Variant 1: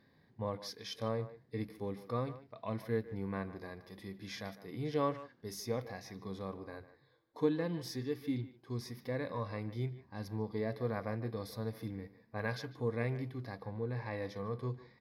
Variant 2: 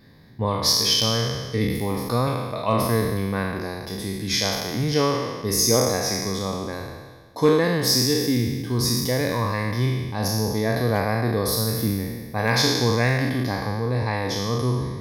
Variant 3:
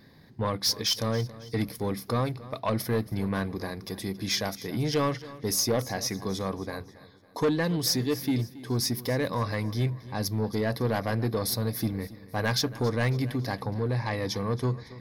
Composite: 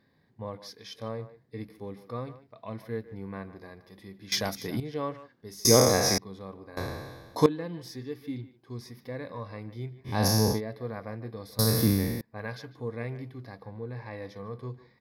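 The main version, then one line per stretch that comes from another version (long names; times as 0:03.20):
1
0:04.32–0:04.80: punch in from 3
0:05.65–0:06.18: punch in from 2
0:06.77–0:07.46: punch in from 2
0:10.09–0:10.56: punch in from 2, crossfade 0.10 s
0:11.59–0:12.21: punch in from 2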